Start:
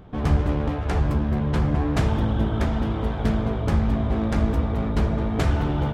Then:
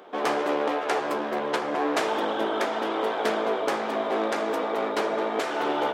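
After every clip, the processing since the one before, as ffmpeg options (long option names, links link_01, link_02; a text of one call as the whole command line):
ffmpeg -i in.wav -af "highpass=frequency=380:width=0.5412,highpass=frequency=380:width=1.3066,alimiter=limit=-20dB:level=0:latency=1:release=302,volume=6.5dB" out.wav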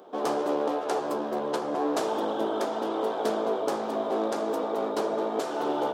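ffmpeg -i in.wav -af "equalizer=frequency=2100:width=1.1:gain=-14" out.wav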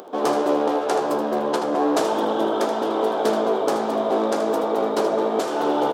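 ffmpeg -i in.wav -af "acompressor=mode=upward:threshold=-44dB:ratio=2.5,aecho=1:1:78:0.316,volume=6.5dB" out.wav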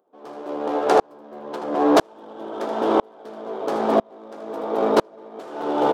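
ffmpeg -i in.wav -filter_complex "[0:a]asplit=2[link_01][link_02];[link_02]adynamicsmooth=sensitivity=4.5:basefreq=1500,volume=3dB[link_03];[link_01][link_03]amix=inputs=2:normalize=0,aeval=exprs='val(0)*pow(10,-36*if(lt(mod(-1*n/s,1),2*abs(-1)/1000),1-mod(-1*n/s,1)/(2*abs(-1)/1000),(mod(-1*n/s,1)-2*abs(-1)/1000)/(1-2*abs(-1)/1000))/20)':channel_layout=same" out.wav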